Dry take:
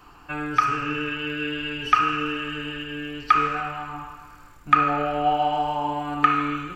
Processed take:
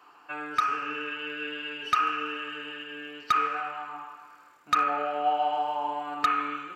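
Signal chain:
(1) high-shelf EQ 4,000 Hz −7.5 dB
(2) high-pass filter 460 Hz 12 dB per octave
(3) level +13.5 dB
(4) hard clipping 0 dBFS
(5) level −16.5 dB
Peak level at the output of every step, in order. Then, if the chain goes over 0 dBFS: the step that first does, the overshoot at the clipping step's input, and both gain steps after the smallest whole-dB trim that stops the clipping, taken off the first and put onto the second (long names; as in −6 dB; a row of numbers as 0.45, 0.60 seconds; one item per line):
−3.5, −4.0, +9.5, 0.0, −16.5 dBFS
step 3, 9.5 dB
step 3 +3.5 dB, step 5 −6.5 dB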